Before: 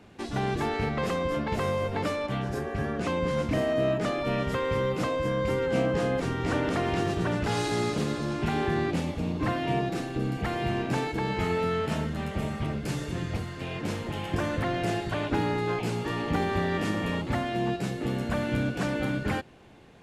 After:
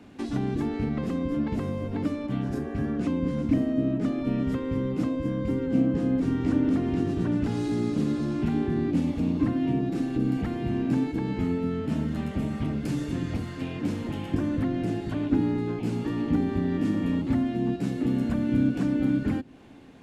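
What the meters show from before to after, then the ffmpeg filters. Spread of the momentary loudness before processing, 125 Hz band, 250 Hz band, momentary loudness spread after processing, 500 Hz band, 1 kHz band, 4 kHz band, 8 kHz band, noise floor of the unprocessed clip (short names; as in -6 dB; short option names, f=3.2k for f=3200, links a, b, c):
5 LU, +1.0 dB, +6.0 dB, 6 LU, -4.5 dB, -9.0 dB, -8.5 dB, n/a, -37 dBFS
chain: -filter_complex "[0:a]acrossover=split=370[a][b];[a]equalizer=f=270:w=3.1:g=13.5[c];[b]acompressor=threshold=-39dB:ratio=10[d];[c][d]amix=inputs=2:normalize=0"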